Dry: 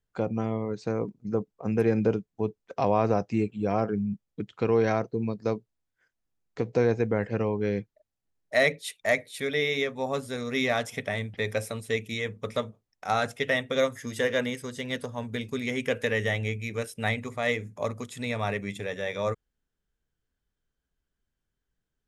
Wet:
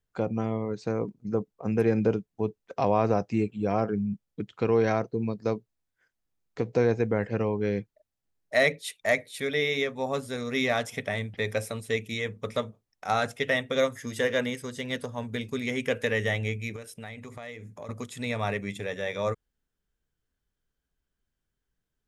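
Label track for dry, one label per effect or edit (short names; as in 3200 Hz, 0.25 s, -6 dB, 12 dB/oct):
16.760000	17.890000	compressor 4:1, threshold -39 dBFS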